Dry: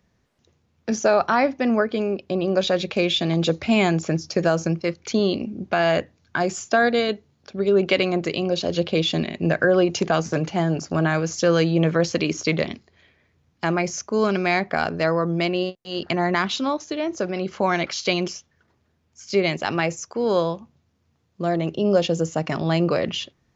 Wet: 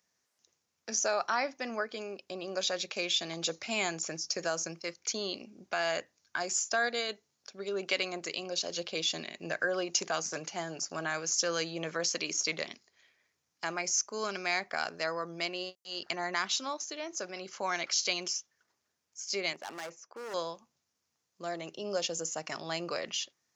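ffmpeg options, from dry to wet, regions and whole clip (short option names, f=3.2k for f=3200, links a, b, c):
-filter_complex "[0:a]asettb=1/sr,asplit=3[a][b][c];[a]atrim=end=19.534[d];[b]atrim=start=19.53:end=20.34,asetpts=PTS-STARTPTS,afade=t=in:d=0.004:c=qsin,afade=t=out:st=0.806:d=0.004:c=qsin,highpass=190,lowpass=3.6k,highshelf=f=2.1k:g=-11,asoftclip=type=hard:threshold=-24dB[e];[c]atrim=start=20.336[f];[d][e]acrossfade=d=0.004:c1=hsin:c2=qsin[g];[g][f]acrossfade=d=0.004:c1=qsin:c2=hsin,highpass=f=1.4k:p=1,highshelf=f=4.5k:t=q:w=1.5:g=6.5,volume=-5.5dB"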